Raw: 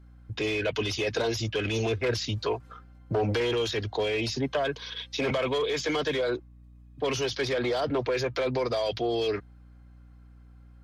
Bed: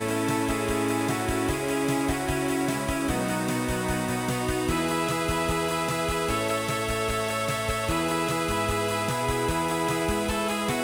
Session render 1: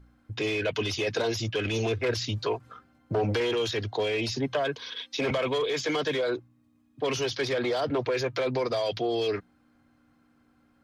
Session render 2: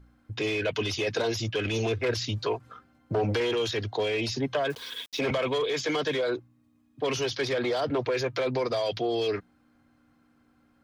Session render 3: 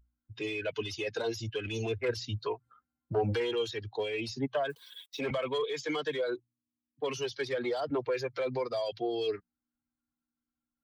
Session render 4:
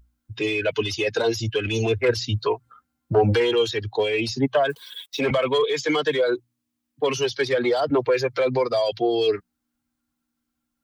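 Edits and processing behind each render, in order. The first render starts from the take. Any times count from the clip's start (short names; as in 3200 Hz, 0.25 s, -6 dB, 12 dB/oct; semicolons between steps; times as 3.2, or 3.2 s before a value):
de-hum 60 Hz, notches 3
4.7–5.19 requantised 8-bit, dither none
per-bin expansion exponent 1.5; upward expander 1.5:1, over -39 dBFS
gain +11 dB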